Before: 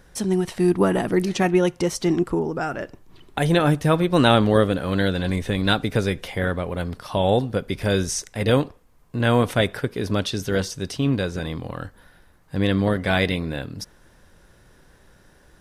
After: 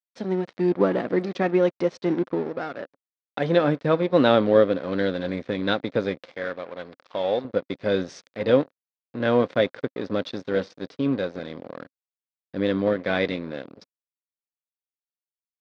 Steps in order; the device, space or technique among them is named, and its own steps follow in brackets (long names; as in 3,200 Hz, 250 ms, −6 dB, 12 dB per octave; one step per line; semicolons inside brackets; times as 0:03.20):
blown loudspeaker (dead-zone distortion −32.5 dBFS; loudspeaker in its box 170–4,300 Hz, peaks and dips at 270 Hz +4 dB, 530 Hz +8 dB, 860 Hz −3 dB, 2,900 Hz −6 dB)
0:06.36–0:07.45: low-shelf EQ 460 Hz −11 dB
level −2.5 dB